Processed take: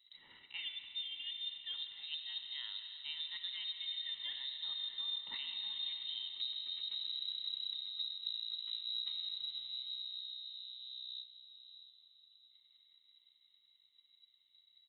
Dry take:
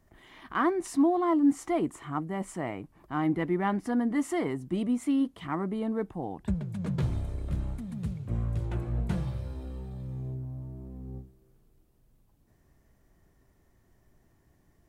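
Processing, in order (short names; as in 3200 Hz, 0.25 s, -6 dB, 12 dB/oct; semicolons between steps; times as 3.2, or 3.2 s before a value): Doppler pass-by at 5.27, 7 m/s, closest 5.6 m; comb 1.1 ms, depth 70%; limiter -28 dBFS, peak gain reduction 10.5 dB; reverse; compressor 5:1, threshold -51 dBFS, peak gain reduction 17.5 dB; reverse; transient shaper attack +6 dB, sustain -4 dB; digital reverb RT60 3.9 s, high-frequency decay 0.9×, pre-delay 30 ms, DRR 5.5 dB; inverted band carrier 3900 Hz; on a send: diffused feedback echo 0.614 s, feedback 45%, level -14.5 dB; on the sum: gain +6.5 dB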